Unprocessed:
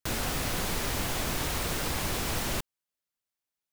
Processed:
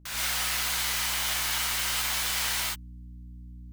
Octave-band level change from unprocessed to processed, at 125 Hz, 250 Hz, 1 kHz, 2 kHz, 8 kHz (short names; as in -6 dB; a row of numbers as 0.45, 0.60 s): -7.5, -11.5, 0.0, +5.0, +6.0 dB